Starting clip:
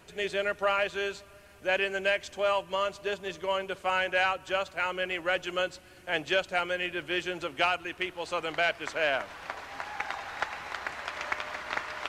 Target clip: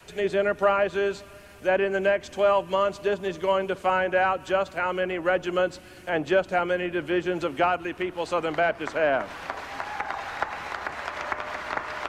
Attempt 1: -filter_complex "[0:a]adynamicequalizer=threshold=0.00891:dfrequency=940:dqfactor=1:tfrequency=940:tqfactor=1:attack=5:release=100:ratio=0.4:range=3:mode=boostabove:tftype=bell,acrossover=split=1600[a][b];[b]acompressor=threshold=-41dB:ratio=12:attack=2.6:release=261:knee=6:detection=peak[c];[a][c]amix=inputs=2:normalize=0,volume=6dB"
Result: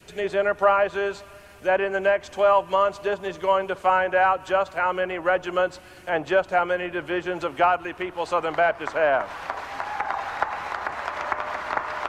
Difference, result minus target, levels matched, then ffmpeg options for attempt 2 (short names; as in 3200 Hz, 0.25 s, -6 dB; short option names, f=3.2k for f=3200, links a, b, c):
250 Hz band -4.5 dB
-filter_complex "[0:a]adynamicequalizer=threshold=0.00891:dfrequency=240:dqfactor=1:tfrequency=240:tqfactor=1:attack=5:release=100:ratio=0.4:range=3:mode=boostabove:tftype=bell,acrossover=split=1600[a][b];[b]acompressor=threshold=-41dB:ratio=12:attack=2.6:release=261:knee=6:detection=peak[c];[a][c]amix=inputs=2:normalize=0,volume=6dB"